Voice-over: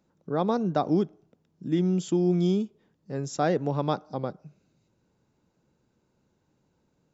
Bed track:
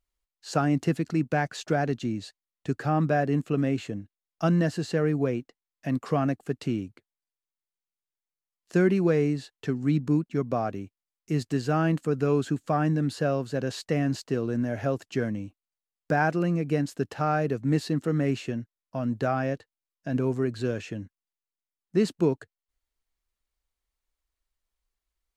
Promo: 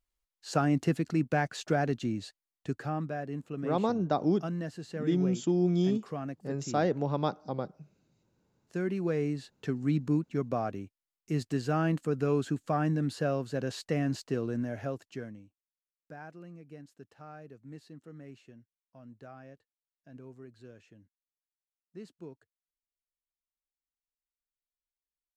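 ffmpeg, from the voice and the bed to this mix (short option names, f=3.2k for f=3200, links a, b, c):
-filter_complex "[0:a]adelay=3350,volume=-3dB[a];[1:a]volume=5.5dB,afade=t=out:st=2.44:d=0.65:silence=0.334965,afade=t=in:st=8.73:d=0.85:silence=0.398107,afade=t=out:st=14.41:d=1.12:silence=0.11885[b];[a][b]amix=inputs=2:normalize=0"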